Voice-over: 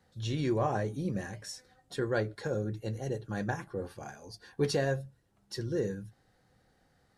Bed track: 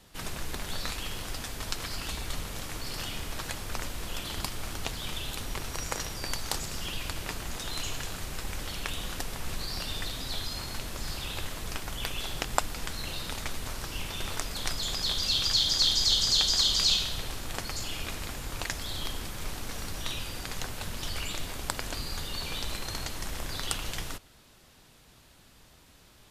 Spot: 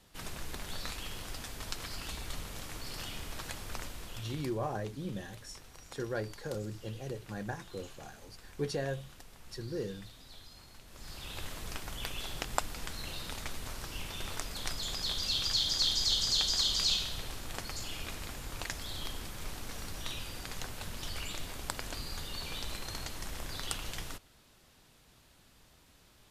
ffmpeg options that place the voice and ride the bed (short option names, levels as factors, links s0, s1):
-filter_complex "[0:a]adelay=4000,volume=0.531[s0];[1:a]volume=2.37,afade=t=out:st=3.73:d=0.86:silence=0.237137,afade=t=in:st=10.86:d=0.63:silence=0.223872[s1];[s0][s1]amix=inputs=2:normalize=0"